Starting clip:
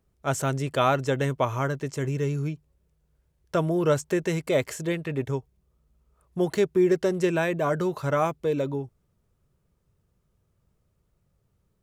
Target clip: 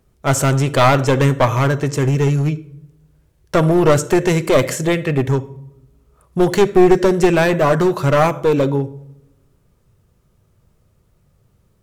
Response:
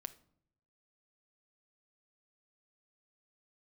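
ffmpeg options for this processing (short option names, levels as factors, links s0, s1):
-filter_complex "[0:a]asplit=2[s0][s1];[1:a]atrim=start_sample=2205,asetrate=33957,aresample=44100[s2];[s1][s2]afir=irnorm=-1:irlink=0,volume=4.73[s3];[s0][s3]amix=inputs=2:normalize=0,aeval=exprs='clip(val(0),-1,0.266)':c=same,volume=0.891"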